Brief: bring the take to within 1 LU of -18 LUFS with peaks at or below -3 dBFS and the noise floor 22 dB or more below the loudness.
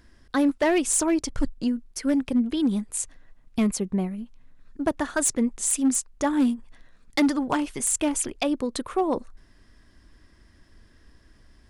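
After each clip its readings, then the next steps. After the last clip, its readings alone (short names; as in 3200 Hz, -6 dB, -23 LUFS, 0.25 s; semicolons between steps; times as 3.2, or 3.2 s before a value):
clipped 0.8%; flat tops at -15.5 dBFS; loudness -25.5 LUFS; peak -15.5 dBFS; loudness target -18.0 LUFS
-> clip repair -15.5 dBFS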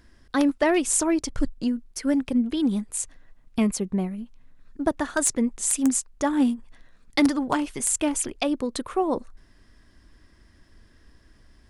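clipped 0.0%; loudness -25.0 LUFS; peak -6.5 dBFS; loudness target -18.0 LUFS
-> gain +7 dB; limiter -3 dBFS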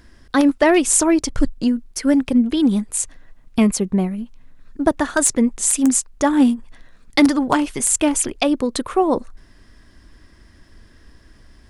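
loudness -18.0 LUFS; peak -3.0 dBFS; noise floor -50 dBFS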